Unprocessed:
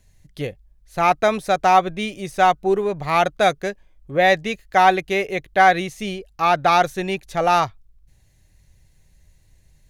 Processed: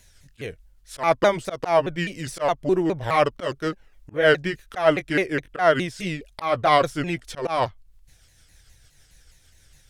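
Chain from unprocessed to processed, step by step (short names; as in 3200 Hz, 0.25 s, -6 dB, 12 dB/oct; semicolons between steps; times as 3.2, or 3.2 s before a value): repeated pitch sweeps -5 st, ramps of 0.207 s; auto swell 0.161 s; mismatched tape noise reduction encoder only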